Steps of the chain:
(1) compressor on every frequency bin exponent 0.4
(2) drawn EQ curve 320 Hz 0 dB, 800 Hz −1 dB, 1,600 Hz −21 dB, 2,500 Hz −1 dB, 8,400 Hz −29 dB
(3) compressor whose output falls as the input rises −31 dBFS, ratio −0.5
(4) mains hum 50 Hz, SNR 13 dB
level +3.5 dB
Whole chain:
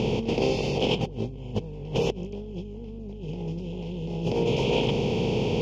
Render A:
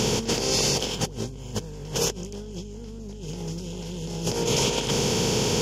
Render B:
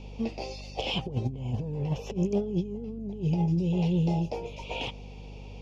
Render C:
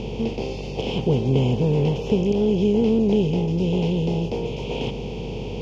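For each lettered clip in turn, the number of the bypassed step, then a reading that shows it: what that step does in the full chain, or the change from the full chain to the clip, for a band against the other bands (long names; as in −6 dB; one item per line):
2, 4 kHz band +8.0 dB
1, 125 Hz band +5.5 dB
3, change in crest factor −2.5 dB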